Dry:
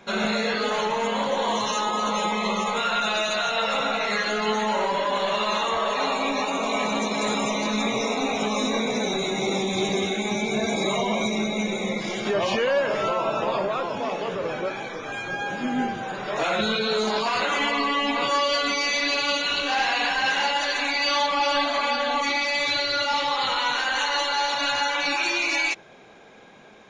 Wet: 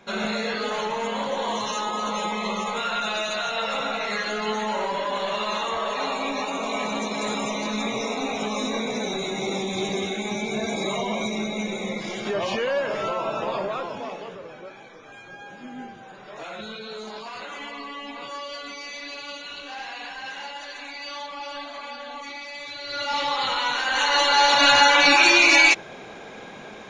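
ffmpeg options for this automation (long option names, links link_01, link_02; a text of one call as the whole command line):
ffmpeg -i in.wav -af "volume=19dB,afade=type=out:start_time=13.74:duration=0.73:silence=0.316228,afade=type=in:start_time=22.79:duration=0.43:silence=0.251189,afade=type=in:start_time=23.83:duration=0.87:silence=0.334965" out.wav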